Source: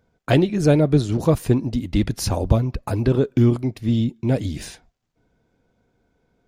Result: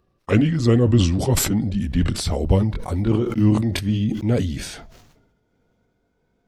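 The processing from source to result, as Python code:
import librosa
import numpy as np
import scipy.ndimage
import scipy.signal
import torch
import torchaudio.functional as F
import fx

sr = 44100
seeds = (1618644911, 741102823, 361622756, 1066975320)

y = fx.pitch_glide(x, sr, semitones=-4.5, runs='ending unshifted')
y = fx.sustainer(y, sr, db_per_s=48.0)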